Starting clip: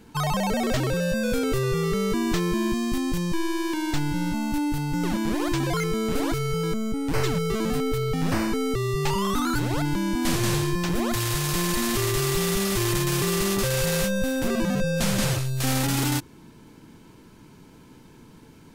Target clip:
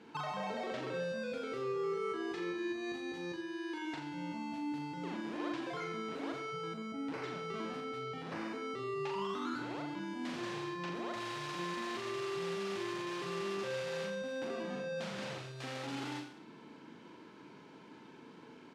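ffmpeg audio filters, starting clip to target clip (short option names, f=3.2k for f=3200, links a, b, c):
-filter_complex "[0:a]asettb=1/sr,asplit=3[a][b][c];[a]atrim=end=1.564[d];[b]atrim=start=1.56:end=3.85,asetpts=PTS-STARTPTS,afade=t=in:d=0.004:c=qsin,afade=t=out:st=2.286:d=0.004:c=qsin,aecho=1:1:2.4:0.79,atrim=end_sample=100989[e];[c]atrim=start=3.846[f];[d][e]acrossfade=d=0.004:c1=hsin:c2=qsin[g];[g][f]acrossfade=d=0.004:c1=qsin:c2=hsin,acompressor=threshold=-32dB:ratio=12,highpass=280,lowpass=3.6k,aecho=1:1:40|84|132.4|185.6|244.2:0.631|0.398|0.251|0.158|0.1,volume=-3dB"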